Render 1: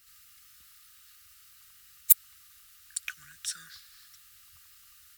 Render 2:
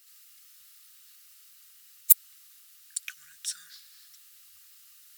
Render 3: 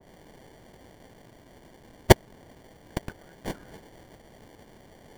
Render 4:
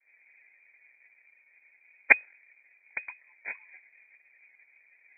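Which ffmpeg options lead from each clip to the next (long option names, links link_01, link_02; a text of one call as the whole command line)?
ffmpeg -i in.wav -af "tiltshelf=frequency=1200:gain=-8.5,areverse,acompressor=mode=upward:threshold=-45dB:ratio=2.5,areverse,volume=-7dB" out.wav
ffmpeg -i in.wav -filter_complex "[0:a]acrossover=split=190|1600[link_01][link_02][link_03];[link_03]acrusher=samples=34:mix=1:aa=0.000001[link_04];[link_01][link_02][link_04]amix=inputs=3:normalize=0,adynamicequalizer=threshold=0.00282:dfrequency=2000:dqfactor=0.7:tfrequency=2000:tqfactor=0.7:attack=5:release=100:ratio=0.375:range=2:mode=cutabove:tftype=highshelf,volume=3dB" out.wav
ffmpeg -i in.wav -af "afftdn=noise_reduction=15:noise_floor=-44,lowpass=frequency=2100:width_type=q:width=0.5098,lowpass=frequency=2100:width_type=q:width=0.6013,lowpass=frequency=2100:width_type=q:width=0.9,lowpass=frequency=2100:width_type=q:width=2.563,afreqshift=-2500,volume=-4dB" out.wav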